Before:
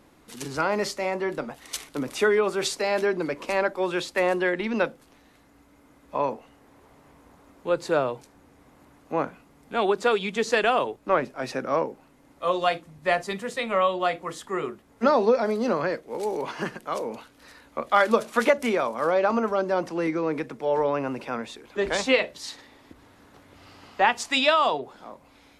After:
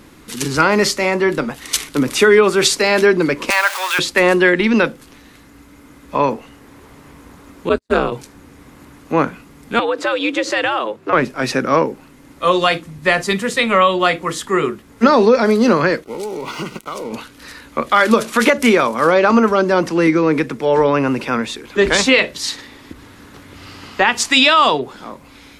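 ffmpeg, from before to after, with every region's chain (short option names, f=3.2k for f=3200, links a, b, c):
-filter_complex "[0:a]asettb=1/sr,asplit=3[a][b][c];[a]atrim=end=3.504[d];[b]atrim=start=3.5:end=3.99,asetpts=PTS-STARTPTS,afade=t=in:d=0.004:c=qsin,afade=t=out:st=0.486:d=0.004:c=qsin,aeval=exprs='val(0)+0.5*0.0335*sgn(val(0))':c=same,highpass=f=810:w=0.5412,highpass=f=810:w=1.3066[e];[c]atrim=start=3.986[f];[d][e]acrossfade=d=0.004:c1=hsin:c2=qsin[g];[g][f]acrossfade=d=0.004:c1=qsin:c2=hsin,asettb=1/sr,asplit=3[h][i][j];[h]atrim=end=7.694[k];[i]atrim=start=7.69:end=8.12,asetpts=PTS-STARTPTS,afade=t=in:d=0.004:c=qsin,afade=t=out:st=0.426:d=0.004:c=qsin,agate=range=-50dB:threshold=-29dB:ratio=16:release=100:detection=peak,aeval=exprs='val(0)*sin(2*PI*98*n/s)':c=same[l];[j]atrim=start=8.116[m];[k][l]acrossfade=d=0.004:c1=hsin:c2=qsin[n];[n][m]acrossfade=d=0.004:c1=qsin:c2=hsin,asettb=1/sr,asplit=3[o][p][q];[o]atrim=end=9.794[r];[p]atrim=start=9.79:end=11.13,asetpts=PTS-STARTPTS,afade=t=in:d=0.004:c=qsin,afade=t=out:st=1.336:d=0.004:c=qsin,highshelf=f=5k:g=-11.5,acompressor=threshold=-26dB:ratio=3:attack=3.2:release=140:knee=1:detection=peak,afreqshift=96[s];[q]atrim=start=11.126[t];[r][s]acrossfade=d=0.004:c1=hsin:c2=qsin[u];[u][t]acrossfade=d=0.004:c1=qsin:c2=hsin,asettb=1/sr,asplit=3[v][w][x];[v]atrim=end=16.044[y];[w]atrim=start=16.04:end=17.13,asetpts=PTS-STARTPTS,afade=t=in:d=0.004:c=qsin,afade=t=out:st=1.086:d=0.004:c=qsin,acompressor=threshold=-32dB:ratio=6:attack=3.2:release=140:knee=1:detection=peak,aeval=exprs='sgn(val(0))*max(abs(val(0))-0.00266,0)':c=same,asuperstop=centerf=1700:order=12:qfactor=5[z];[x]atrim=start=17.126[aa];[y][z]acrossfade=d=0.004:c1=hsin:c2=qsin[ab];[ab][aa]acrossfade=d=0.004:c1=qsin:c2=hsin,equalizer=f=690:w=1.4:g=-8.5,alimiter=level_in=15.5dB:limit=-1dB:release=50:level=0:latency=1,volume=-1dB"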